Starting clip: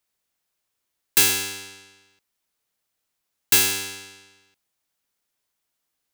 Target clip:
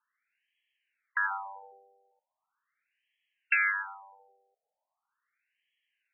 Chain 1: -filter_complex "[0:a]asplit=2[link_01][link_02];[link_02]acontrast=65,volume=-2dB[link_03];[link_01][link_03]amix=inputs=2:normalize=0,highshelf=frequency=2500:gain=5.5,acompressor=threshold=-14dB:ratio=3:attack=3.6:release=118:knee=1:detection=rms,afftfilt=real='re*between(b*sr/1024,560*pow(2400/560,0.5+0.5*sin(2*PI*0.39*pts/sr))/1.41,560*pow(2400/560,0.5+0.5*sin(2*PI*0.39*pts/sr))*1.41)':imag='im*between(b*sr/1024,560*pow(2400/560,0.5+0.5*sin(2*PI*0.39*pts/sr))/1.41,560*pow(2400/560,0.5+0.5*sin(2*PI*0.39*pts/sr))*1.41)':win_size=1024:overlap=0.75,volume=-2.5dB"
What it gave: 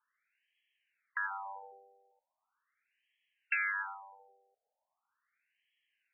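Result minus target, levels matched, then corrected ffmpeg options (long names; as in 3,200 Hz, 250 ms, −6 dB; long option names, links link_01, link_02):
downward compressor: peak gain reduction +6.5 dB
-filter_complex "[0:a]asplit=2[link_01][link_02];[link_02]acontrast=65,volume=-2dB[link_03];[link_01][link_03]amix=inputs=2:normalize=0,highshelf=frequency=2500:gain=5.5,acompressor=threshold=-4dB:ratio=3:attack=3.6:release=118:knee=1:detection=rms,afftfilt=real='re*between(b*sr/1024,560*pow(2400/560,0.5+0.5*sin(2*PI*0.39*pts/sr))/1.41,560*pow(2400/560,0.5+0.5*sin(2*PI*0.39*pts/sr))*1.41)':imag='im*between(b*sr/1024,560*pow(2400/560,0.5+0.5*sin(2*PI*0.39*pts/sr))/1.41,560*pow(2400/560,0.5+0.5*sin(2*PI*0.39*pts/sr))*1.41)':win_size=1024:overlap=0.75,volume=-2.5dB"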